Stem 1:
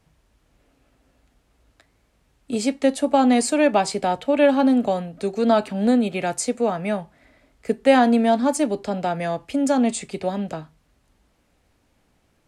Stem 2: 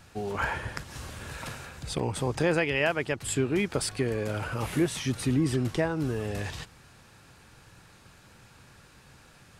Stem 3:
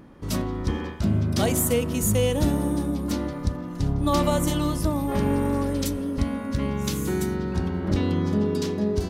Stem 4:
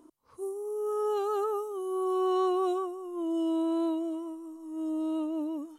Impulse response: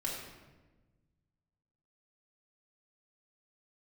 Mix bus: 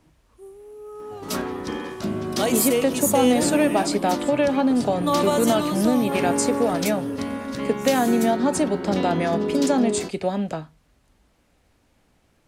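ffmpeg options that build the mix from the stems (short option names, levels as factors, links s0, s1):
-filter_complex "[0:a]acompressor=threshold=0.126:ratio=6,volume=1.19[s0];[1:a]asplit=2[s1][s2];[s2]adelay=3.5,afreqshift=-1.2[s3];[s1][s3]amix=inputs=2:normalize=1,adelay=950,volume=0.473[s4];[2:a]highpass=270,adelay=1000,volume=1.33[s5];[3:a]volume=0.422[s6];[s0][s4][s5][s6]amix=inputs=4:normalize=0"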